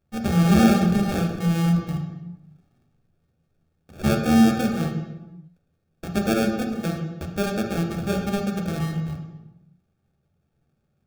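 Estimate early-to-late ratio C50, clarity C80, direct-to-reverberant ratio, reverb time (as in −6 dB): 5.5 dB, 7.5 dB, 2.5 dB, 0.95 s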